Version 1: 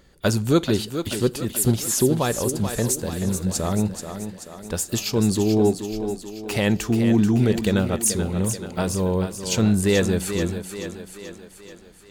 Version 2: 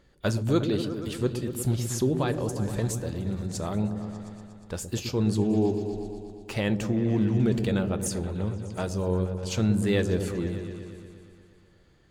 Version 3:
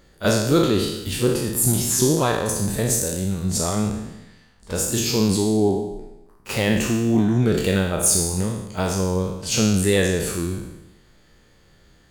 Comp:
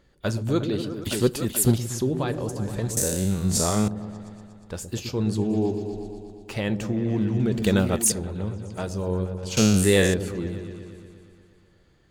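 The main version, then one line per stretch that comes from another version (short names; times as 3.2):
2
1.04–1.78 from 1
2.97–3.88 from 3
7.62–8.12 from 1
9.57–10.14 from 3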